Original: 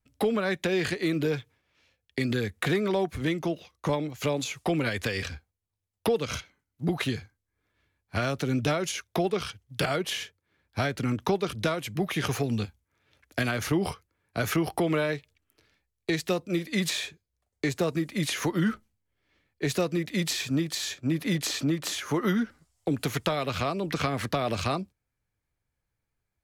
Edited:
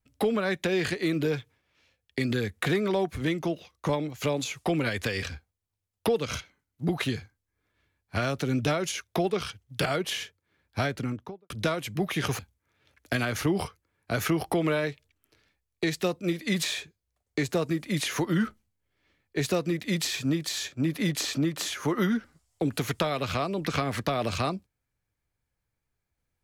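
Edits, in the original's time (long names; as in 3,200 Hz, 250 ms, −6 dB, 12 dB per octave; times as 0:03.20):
0:10.82–0:11.50: fade out and dull
0:12.39–0:12.65: remove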